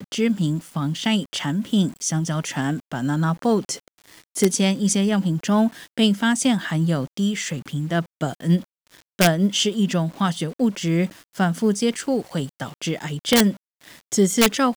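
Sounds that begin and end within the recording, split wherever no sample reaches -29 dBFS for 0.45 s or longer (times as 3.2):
4.36–8.61
9.19–13.52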